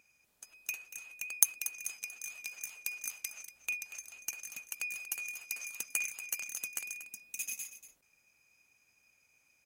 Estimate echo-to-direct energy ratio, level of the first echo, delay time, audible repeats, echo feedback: −13.0 dB, −13.0 dB, 236 ms, 1, repeats not evenly spaced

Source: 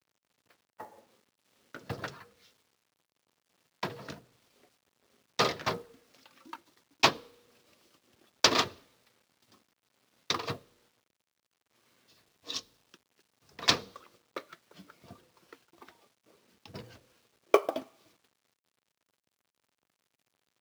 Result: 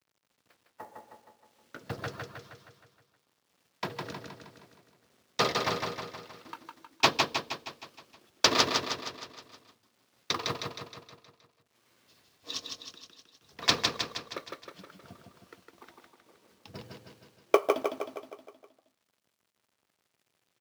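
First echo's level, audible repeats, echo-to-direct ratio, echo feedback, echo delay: −4.0 dB, 6, −2.5 dB, 55%, 157 ms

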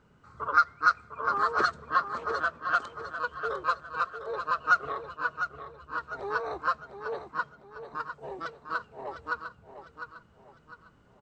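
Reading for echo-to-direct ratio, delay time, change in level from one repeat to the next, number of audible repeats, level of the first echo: −8.5 dB, 703 ms, −8.5 dB, 4, −9.0 dB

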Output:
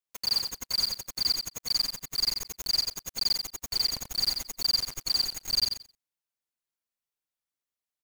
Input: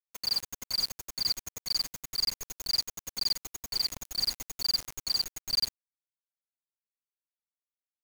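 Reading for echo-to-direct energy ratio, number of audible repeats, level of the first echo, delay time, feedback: −6.5 dB, 2, −6.5 dB, 88 ms, 17%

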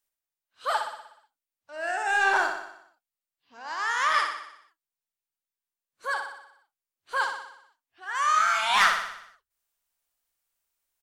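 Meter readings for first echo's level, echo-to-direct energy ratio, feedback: −6.0 dB, −4.0 dB, 58%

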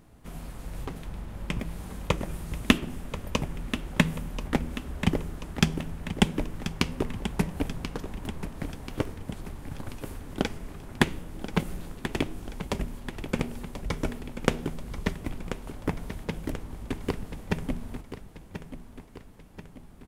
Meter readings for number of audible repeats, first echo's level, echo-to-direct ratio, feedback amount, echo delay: 5, −11.0 dB, −9.5 dB, 52%, 1,035 ms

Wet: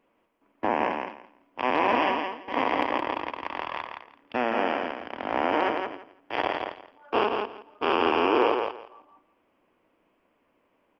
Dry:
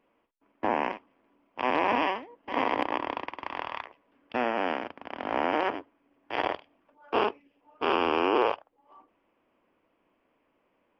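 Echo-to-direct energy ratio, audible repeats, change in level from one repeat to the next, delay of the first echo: −5.0 dB, 3, −15.0 dB, 168 ms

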